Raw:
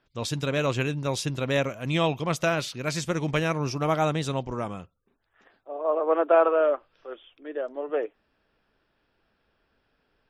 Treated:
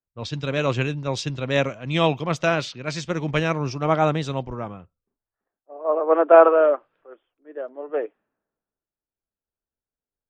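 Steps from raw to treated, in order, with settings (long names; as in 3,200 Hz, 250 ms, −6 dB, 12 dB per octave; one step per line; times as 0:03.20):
moving average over 4 samples
low-pass that shuts in the quiet parts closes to 1,200 Hz, open at −23 dBFS
multiband upward and downward expander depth 70%
level +3 dB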